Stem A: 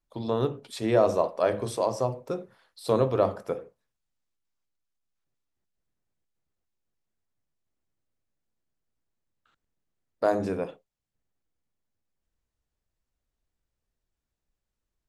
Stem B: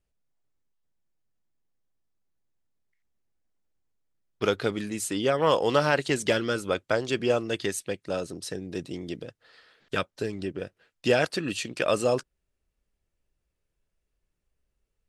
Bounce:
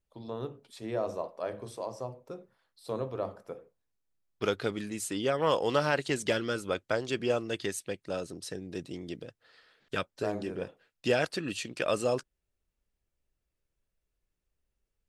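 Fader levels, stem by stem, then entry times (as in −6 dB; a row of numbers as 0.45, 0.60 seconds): −11.0, −4.5 decibels; 0.00, 0.00 seconds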